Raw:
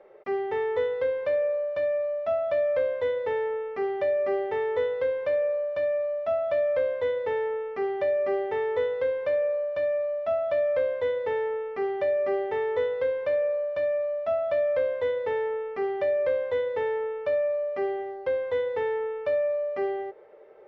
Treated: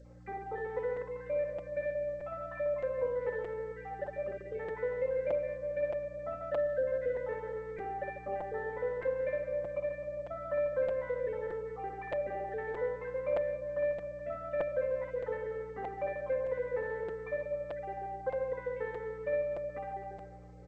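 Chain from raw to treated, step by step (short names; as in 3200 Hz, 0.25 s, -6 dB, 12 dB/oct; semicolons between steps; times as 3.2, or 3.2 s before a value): random spectral dropouts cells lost 38%; elliptic low-pass 2400 Hz, stop band 80 dB; 2.33–3.64 bell 110 Hz +4.5 dB 0.29 oct; notch 730 Hz, Q 19; comb 3.9 ms, depth 62%; hum 60 Hz, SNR 17 dB; reverse bouncing-ball echo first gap 60 ms, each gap 1.4×, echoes 5; crackling interface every 0.62 s, samples 256, repeat, from 0.96; gain -8.5 dB; G.722 64 kbps 16000 Hz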